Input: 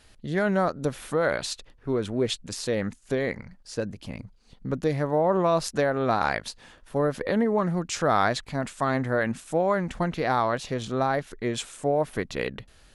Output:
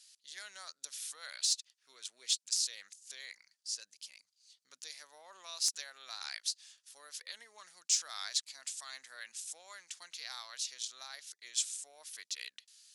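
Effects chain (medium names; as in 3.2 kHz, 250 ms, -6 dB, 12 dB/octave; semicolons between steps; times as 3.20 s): band-pass filter 5.5 kHz, Q 1.4; differentiator; sine folder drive 5 dB, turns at -16.5 dBFS; trim -1.5 dB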